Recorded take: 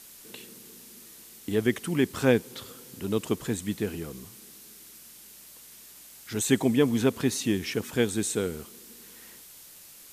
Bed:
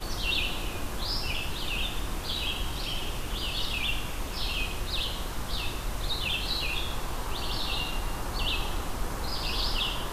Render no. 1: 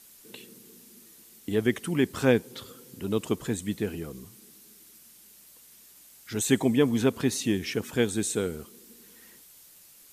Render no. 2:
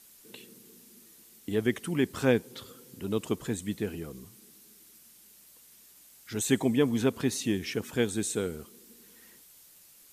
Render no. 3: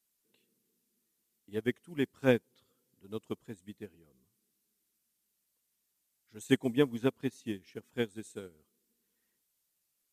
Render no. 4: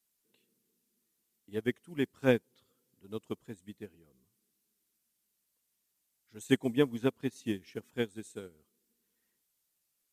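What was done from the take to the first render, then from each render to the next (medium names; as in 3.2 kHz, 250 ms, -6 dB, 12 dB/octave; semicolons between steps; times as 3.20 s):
noise reduction 6 dB, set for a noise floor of -50 dBFS
trim -2.5 dB
upward expansion 2.5:1, over -36 dBFS
7.36–7.91 s: gain +3.5 dB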